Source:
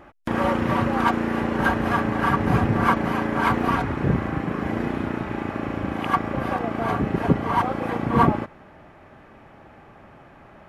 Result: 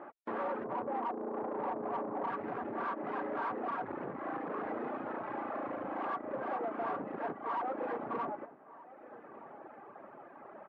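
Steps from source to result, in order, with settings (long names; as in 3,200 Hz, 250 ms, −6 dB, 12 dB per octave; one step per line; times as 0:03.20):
0:00.64–0:02.30: Butterworth low-pass 1,100 Hz 72 dB per octave
reverb reduction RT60 1.4 s
downward compressor 12 to 1, threshold −25 dBFS, peak gain reduction 14 dB
tube saturation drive 35 dB, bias 0.45
flat-topped band-pass 660 Hz, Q 0.59
slap from a distant wall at 210 metres, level −17 dB
level +3.5 dB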